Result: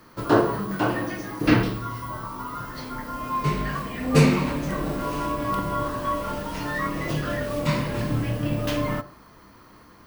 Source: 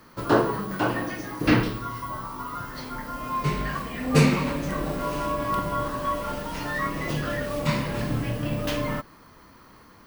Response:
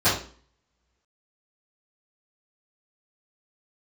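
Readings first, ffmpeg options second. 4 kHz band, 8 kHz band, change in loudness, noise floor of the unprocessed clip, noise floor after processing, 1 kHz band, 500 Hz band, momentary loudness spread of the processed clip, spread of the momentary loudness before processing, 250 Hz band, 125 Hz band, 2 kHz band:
0.0 dB, 0.0 dB, +1.0 dB, -52 dBFS, -51 dBFS, +0.5 dB, +1.5 dB, 12 LU, 12 LU, +2.0 dB, +2.0 dB, 0.0 dB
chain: -filter_complex "[0:a]asplit=2[s0][s1];[1:a]atrim=start_sample=2205,lowpass=1500[s2];[s1][s2]afir=irnorm=-1:irlink=0,volume=0.0473[s3];[s0][s3]amix=inputs=2:normalize=0"

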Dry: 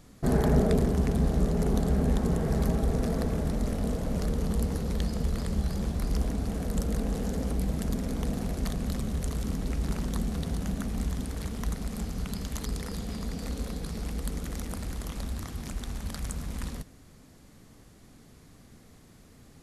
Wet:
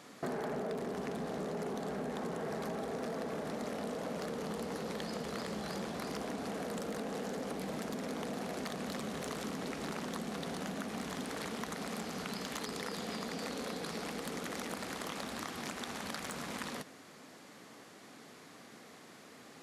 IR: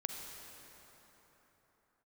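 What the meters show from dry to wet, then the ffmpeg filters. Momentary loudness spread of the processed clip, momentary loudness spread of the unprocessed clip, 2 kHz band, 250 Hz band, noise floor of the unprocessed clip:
15 LU, 10 LU, +1.5 dB, -9.5 dB, -54 dBFS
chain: -filter_complex "[0:a]asplit=2[s0][s1];[s1]highpass=f=720:p=1,volume=10,asoftclip=type=tanh:threshold=0.299[s2];[s0][s2]amix=inputs=2:normalize=0,lowpass=f=3000:p=1,volume=0.501,highpass=180,acompressor=threshold=0.0282:ratio=6,volume=0.562"

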